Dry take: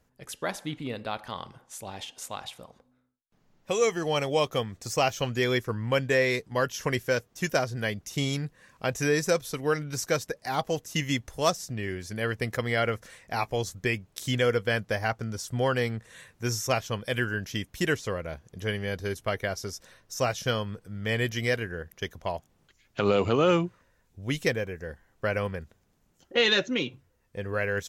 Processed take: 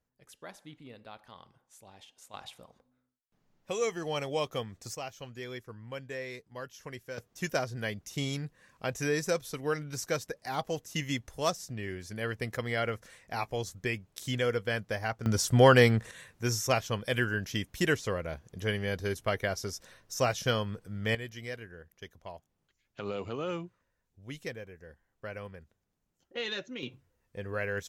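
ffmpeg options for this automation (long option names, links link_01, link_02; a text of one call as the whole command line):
ffmpeg -i in.wav -af "asetnsamples=nb_out_samples=441:pad=0,asendcmd='2.34 volume volume -6.5dB;4.95 volume volume -15.5dB;7.18 volume volume -5dB;15.26 volume volume 7dB;16.11 volume volume -1dB;21.15 volume volume -13dB;26.83 volume volume -5dB',volume=-15dB" out.wav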